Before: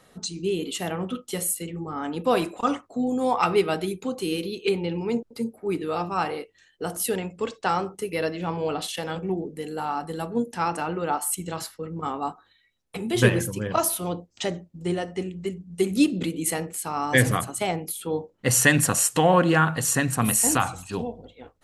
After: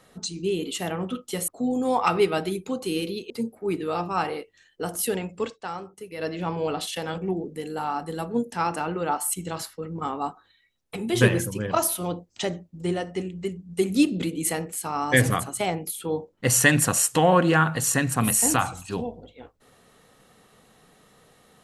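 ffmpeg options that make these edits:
-filter_complex "[0:a]asplit=5[s0][s1][s2][s3][s4];[s0]atrim=end=1.482[s5];[s1]atrim=start=2.838:end=4.662[s6];[s2]atrim=start=5.308:end=7.59,asetpts=PTS-STARTPTS,afade=t=out:st=2.152:d=0.13:silence=0.334965[s7];[s3]atrim=start=7.59:end=8.18,asetpts=PTS-STARTPTS,volume=0.335[s8];[s4]atrim=start=8.18,asetpts=PTS-STARTPTS,afade=t=in:d=0.13:silence=0.334965[s9];[s5][s6]acrossfade=d=0.004:c1=hsin:c2=hsin[s10];[s7][s8][s9]concat=n=3:v=0:a=1[s11];[s10][s11]acrossfade=d=0.004:c1=hsin:c2=hsin"

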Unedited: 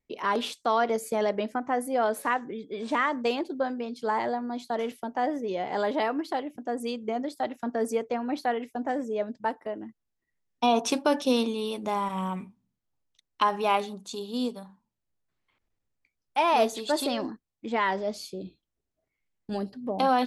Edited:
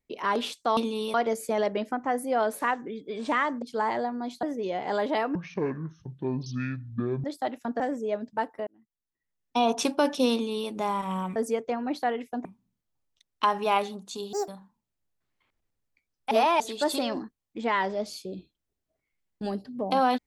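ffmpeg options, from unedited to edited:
-filter_complex "[0:a]asplit=15[s0][s1][s2][s3][s4][s5][s6][s7][s8][s9][s10][s11][s12][s13][s14];[s0]atrim=end=0.772[s15];[s1]atrim=start=11.398:end=11.772[s16];[s2]atrim=start=0.768:end=3.252[s17];[s3]atrim=start=3.908:end=4.722[s18];[s4]atrim=start=5.278:end=6.204[s19];[s5]atrim=start=6.2:end=7.22,asetpts=PTS-STARTPTS,asetrate=23814,aresample=44100[s20];[s6]atrim=start=7.216:end=7.782[s21];[s7]atrim=start=8.868:end=9.74,asetpts=PTS-STARTPTS,afade=t=out:st=0.868:d=0.004:c=hsin[s22];[s8]atrim=start=9.74:end=12.432,asetpts=PTS-STARTPTS,afade=t=in:d=1.08[s23];[s9]atrim=start=7.778:end=8.872[s24];[s10]atrim=start=12.428:end=14.314[s25];[s11]atrim=start=14.31:end=14.56,asetpts=PTS-STARTPTS,asetrate=72765,aresample=44100[s26];[s12]atrim=start=14.556:end=16.392[s27];[s13]atrim=start=16.388:end=16.682,asetpts=PTS-STARTPTS,areverse[s28];[s14]atrim=start=16.678[s29];[s15][s16]acrossfade=d=0.004:c1=hsin:c2=hsin[s30];[s30][s17]acrossfade=d=0.004:c1=hsin:c2=hsin[s31];[s31][s18]acrossfade=d=0.004:c1=hsin:c2=hsin[s32];[s32][s19]acrossfade=d=0.004:c1=hsin:c2=hsin[s33];[s33][s20]acrossfade=d=0.004:c1=hsin:c2=hsin[s34];[s34][s21]acrossfade=d=0.004:c1=hsin:c2=hsin[s35];[s22][s23]concat=n=2:v=0:a=1[s36];[s35][s36]acrossfade=d=0.004:c1=hsin:c2=hsin[s37];[s37][s24]acrossfade=d=0.004:c1=hsin:c2=hsin[s38];[s38][s25]acrossfade=d=0.004:c1=hsin:c2=hsin[s39];[s39][s26]acrossfade=d=0.004:c1=hsin:c2=hsin[s40];[s40][s27]acrossfade=d=0.004:c1=hsin:c2=hsin[s41];[s41][s28]acrossfade=d=0.004:c1=hsin:c2=hsin[s42];[s42][s29]acrossfade=d=0.004:c1=hsin:c2=hsin"

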